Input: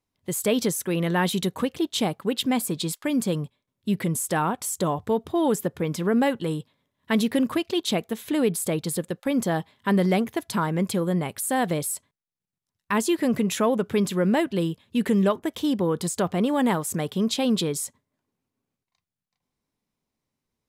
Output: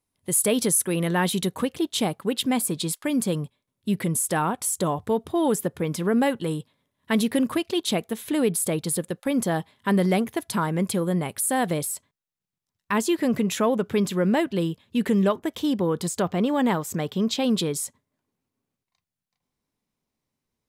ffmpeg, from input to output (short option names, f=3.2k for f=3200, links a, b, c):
-af "asetnsamples=n=441:p=0,asendcmd='1.08 equalizer g 6;11.85 equalizer g -2;16.22 equalizer g -10.5;17.44 equalizer g 1',equalizer=f=10k:t=o:w=0.38:g=13.5"